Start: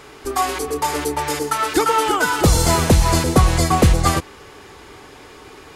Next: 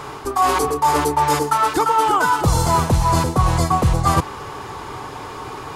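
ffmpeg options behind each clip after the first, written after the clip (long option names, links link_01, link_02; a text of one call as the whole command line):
ffmpeg -i in.wav -af "equalizer=frequency=125:width_type=o:width=1:gain=9,equalizer=frequency=1000:width_type=o:width=1:gain=11,equalizer=frequency=2000:width_type=o:width=1:gain=-3,areverse,acompressor=threshold=-19dB:ratio=6,areverse,volume=5dB" out.wav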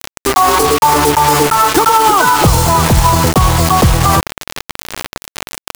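ffmpeg -i in.wav -af "acrusher=bits=3:mix=0:aa=0.000001,alimiter=level_in=12dB:limit=-1dB:release=50:level=0:latency=1,volume=-1dB" out.wav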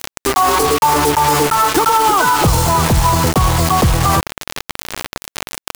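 ffmpeg -i in.wav -af "acompressor=mode=upward:threshold=-12dB:ratio=2.5,asoftclip=type=tanh:threshold=-1.5dB,volume=-2dB" out.wav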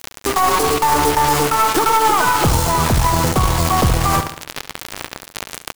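ffmpeg -i in.wav -af "aecho=1:1:70|140|210|280:0.316|0.133|0.0558|0.0234,aeval=exprs='0.75*(cos(1*acos(clip(val(0)/0.75,-1,1)))-cos(1*PI/2))+0.188*(cos(2*acos(clip(val(0)/0.75,-1,1)))-cos(2*PI/2))':channel_layout=same,volume=-3dB" out.wav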